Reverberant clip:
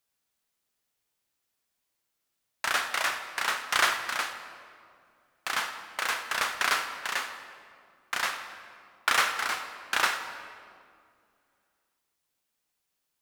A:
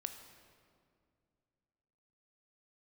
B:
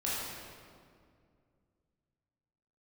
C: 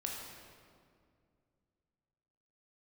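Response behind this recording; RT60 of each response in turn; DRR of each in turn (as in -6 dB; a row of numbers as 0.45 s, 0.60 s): A; 2.3 s, 2.2 s, 2.2 s; 6.5 dB, -8.5 dB, -1.5 dB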